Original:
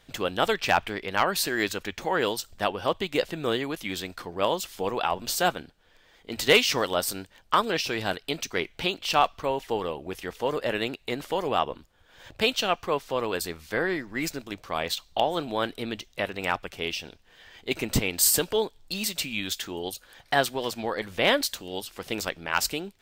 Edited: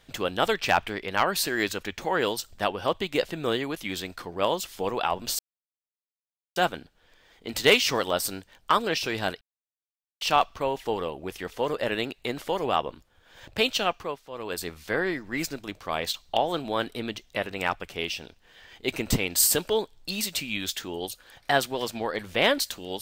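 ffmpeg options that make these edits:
-filter_complex "[0:a]asplit=6[a][b][c][d][e][f];[a]atrim=end=5.39,asetpts=PTS-STARTPTS,afade=t=out:st=5.386:d=0.004:c=hsin,apad=pad_dur=1.17[g];[b]atrim=start=5.39:end=8.24,asetpts=PTS-STARTPTS,afade=t=in:d=0.004:c=hsin,afade=t=out:st=2.846:d=0.004:c=hsin[h];[c]atrim=start=8.24:end=9.04,asetpts=PTS-STARTPTS,volume=0[i];[d]atrim=start=9.04:end=13.05,asetpts=PTS-STARTPTS,afade=t=in:d=0.004:c=hsin,afade=t=out:st=3.64:d=0.37:silence=0.237137[j];[e]atrim=start=13.05:end=13.14,asetpts=PTS-STARTPTS,volume=-12.5dB[k];[f]atrim=start=13.14,asetpts=PTS-STARTPTS,afade=t=in:d=0.37:silence=0.237137[l];[g][h][i][j][k][l]concat=n=6:v=0:a=1"

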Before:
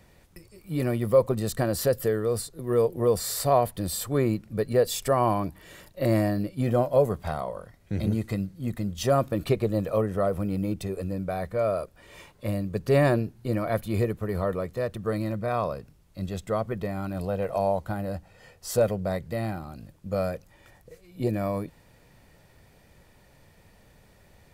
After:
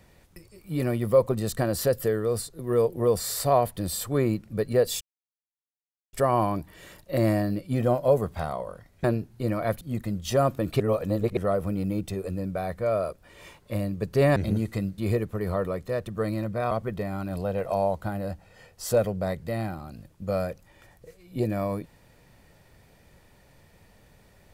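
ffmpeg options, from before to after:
-filter_complex "[0:a]asplit=9[a][b][c][d][e][f][g][h][i];[a]atrim=end=5.01,asetpts=PTS-STARTPTS,afade=t=out:st=5.006:d=0.004:c=hsin,apad=pad_dur=1.12[j];[b]atrim=start=5.01:end=7.922,asetpts=PTS-STARTPTS,afade=t=in:d=0.004:c=hsin[k];[c]atrim=start=13.088:end=13.862[l];[d]atrim=start=8.538:end=9.532[m];[e]atrim=start=9.528:end=10.102,asetpts=PTS-STARTPTS,areverse[n];[f]atrim=start=10.098:end=13.092[o];[g]atrim=start=7.918:end=8.542[p];[h]atrim=start=13.858:end=15.592[q];[i]atrim=start=16.548[r];[j][k]concat=n=2:v=0:a=1[s];[s][l]acrossfade=d=0.004:c1=hsin:c2=hsin[t];[t][m]acrossfade=d=0.004:c1=hsin:c2=hsin[u];[u][n]acrossfade=d=0.004:c1=hsin:c2=hsin[v];[v][o]acrossfade=d=0.004:c1=hsin:c2=hsin[w];[w][p]acrossfade=d=0.004:c1=hsin:c2=hsin[x];[x][q]acrossfade=d=0.004:c1=hsin:c2=hsin[y];[y][r]acrossfade=d=0.004:c1=hsin:c2=hsin"

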